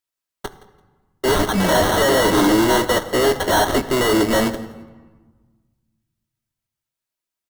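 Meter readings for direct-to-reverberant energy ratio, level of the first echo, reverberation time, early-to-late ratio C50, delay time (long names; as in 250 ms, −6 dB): 6.5 dB, −20.0 dB, 1.3 s, 13.5 dB, 169 ms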